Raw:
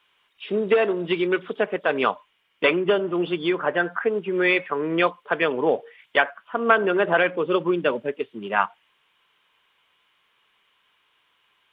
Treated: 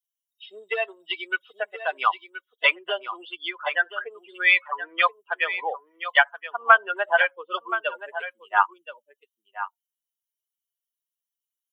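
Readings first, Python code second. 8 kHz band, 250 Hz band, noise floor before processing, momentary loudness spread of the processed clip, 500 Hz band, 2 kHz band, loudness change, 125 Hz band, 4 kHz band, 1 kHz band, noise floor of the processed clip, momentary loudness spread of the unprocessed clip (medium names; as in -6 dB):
no reading, under -20 dB, -67 dBFS, 16 LU, -10.0 dB, +2.5 dB, -1.0 dB, under -40 dB, +1.5 dB, +1.5 dB, under -85 dBFS, 7 LU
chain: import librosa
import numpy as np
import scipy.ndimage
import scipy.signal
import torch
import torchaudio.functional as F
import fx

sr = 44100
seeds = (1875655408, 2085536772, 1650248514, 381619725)

p1 = fx.bin_expand(x, sr, power=2.0)
p2 = scipy.signal.sosfilt(scipy.signal.butter(4, 740.0, 'highpass', fs=sr, output='sos'), p1)
p3 = p2 + fx.echo_single(p2, sr, ms=1025, db=-12.0, dry=0)
y = F.gain(torch.from_numpy(p3), 6.5).numpy()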